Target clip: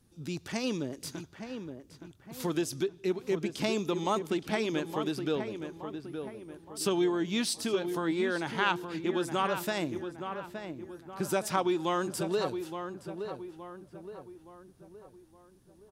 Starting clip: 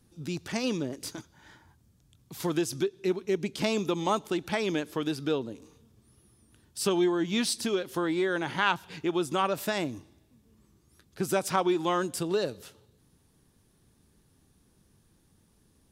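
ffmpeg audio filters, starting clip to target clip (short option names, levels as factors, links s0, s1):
-filter_complex "[0:a]asplit=2[s0][s1];[s1]adelay=869,lowpass=f=2000:p=1,volume=0.422,asplit=2[s2][s3];[s3]adelay=869,lowpass=f=2000:p=1,volume=0.47,asplit=2[s4][s5];[s5]adelay=869,lowpass=f=2000:p=1,volume=0.47,asplit=2[s6][s7];[s7]adelay=869,lowpass=f=2000:p=1,volume=0.47,asplit=2[s8][s9];[s9]adelay=869,lowpass=f=2000:p=1,volume=0.47[s10];[s0][s2][s4][s6][s8][s10]amix=inputs=6:normalize=0,volume=0.75"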